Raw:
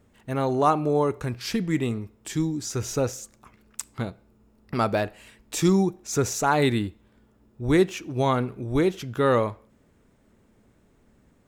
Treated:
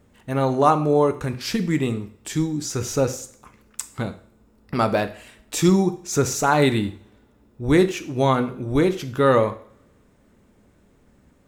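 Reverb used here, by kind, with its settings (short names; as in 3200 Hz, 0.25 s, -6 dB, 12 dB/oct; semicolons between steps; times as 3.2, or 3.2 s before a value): two-slope reverb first 0.5 s, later 1.5 s, from -24 dB, DRR 9 dB; gain +3 dB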